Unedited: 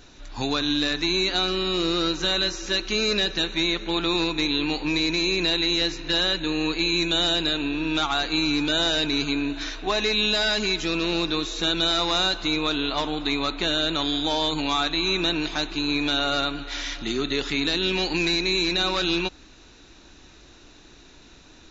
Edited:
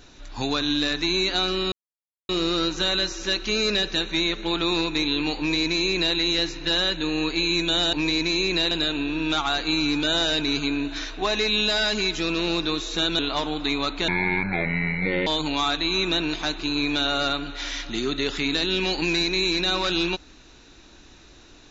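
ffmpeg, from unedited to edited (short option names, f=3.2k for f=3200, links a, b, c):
-filter_complex "[0:a]asplit=7[a][b][c][d][e][f][g];[a]atrim=end=1.72,asetpts=PTS-STARTPTS,afade=t=out:st=1.716:d=0.004:c=hsin,apad=pad_dur=0.57[h];[b]atrim=start=1.72:end=7.362,asetpts=PTS-STARTPTS,afade=t=in:d=0.004:c=hsin[i];[c]atrim=start=4.808:end=5.592[j];[d]atrim=start=7.358:end=11.842[k];[e]atrim=start=12.798:end=13.694[l];[f]atrim=start=13.69:end=14.39,asetpts=PTS-STARTPTS,asetrate=26019,aresample=44100,atrim=end_sample=52322,asetpts=PTS-STARTPTS[m];[g]atrim=start=14.386[n];[h][i]concat=n=2:v=0:a=1[o];[o][j]acrossfade=d=0.004:c1=hsin:c2=hsin[p];[p][k]acrossfade=d=0.004:c1=hsin:c2=hsin[q];[q][l]acrossfade=d=0.004:c1=hsin:c2=hsin[r];[r][m]acrossfade=d=0.004:c1=hsin:c2=hsin[s];[s][n]acrossfade=d=0.004:c1=hsin:c2=hsin"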